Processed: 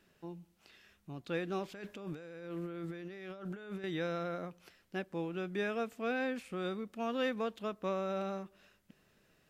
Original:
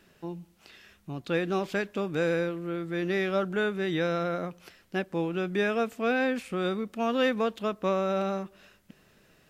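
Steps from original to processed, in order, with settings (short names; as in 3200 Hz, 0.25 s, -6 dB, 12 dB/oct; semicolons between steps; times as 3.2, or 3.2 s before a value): 1.73–3.84 negative-ratio compressor -36 dBFS, ratio -1; gain -8.5 dB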